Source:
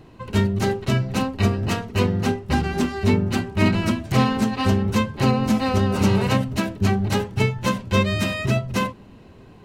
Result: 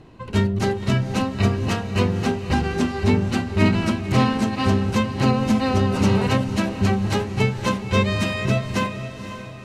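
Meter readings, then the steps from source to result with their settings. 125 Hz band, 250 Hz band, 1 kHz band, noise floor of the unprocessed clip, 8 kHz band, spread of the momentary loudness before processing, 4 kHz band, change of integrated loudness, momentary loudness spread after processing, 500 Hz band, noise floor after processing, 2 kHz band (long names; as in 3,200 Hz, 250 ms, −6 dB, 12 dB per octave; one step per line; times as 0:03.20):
+0.5 dB, +0.5 dB, +0.5 dB, −46 dBFS, −1.0 dB, 5 LU, 0.0 dB, +0.5 dB, 5 LU, +0.5 dB, −35 dBFS, +0.5 dB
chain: Bessel low-pass filter 9,900 Hz, order 8
on a send: feedback delay with all-pass diffusion 521 ms, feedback 44%, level −10.5 dB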